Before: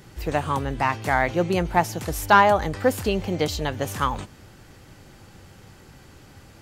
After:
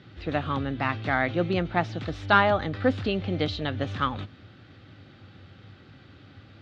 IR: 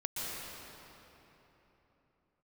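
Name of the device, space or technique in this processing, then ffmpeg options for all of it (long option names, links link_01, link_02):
guitar cabinet: -af "highpass=86,equalizer=frequency=100:width_type=q:width=4:gain=8,equalizer=frequency=270:width_type=q:width=4:gain=5,equalizer=frequency=440:width_type=q:width=4:gain=-3,equalizer=frequency=940:width_type=q:width=4:gain=-9,equalizer=frequency=1300:width_type=q:width=4:gain=4,equalizer=frequency=3700:width_type=q:width=4:gain=7,lowpass=frequency=4000:width=0.5412,lowpass=frequency=4000:width=1.3066,volume=-3dB"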